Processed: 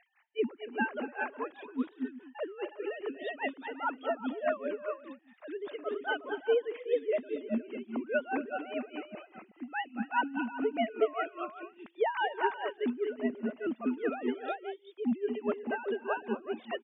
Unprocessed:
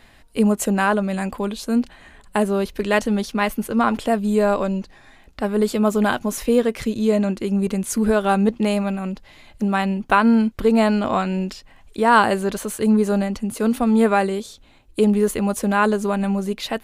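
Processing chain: formants replaced by sine waves; tilt EQ +2 dB/octave; on a send: multi-tap echo 232/244/293/366/510 ms -14.5/-12.5/-18.5/-5/-18 dB; on the sum: wow and flutter 24 cents; logarithmic tremolo 4.9 Hz, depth 18 dB; trim -8 dB

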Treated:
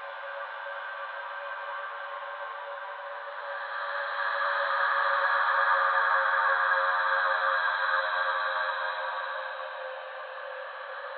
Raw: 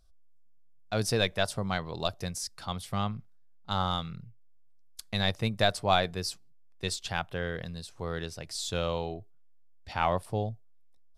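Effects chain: mistuned SSB +360 Hz 220–2700 Hz; echo that smears into a reverb 499 ms, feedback 57%, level -9 dB; Paulstretch 15×, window 0.25 s, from 3.41 s; trim +5.5 dB

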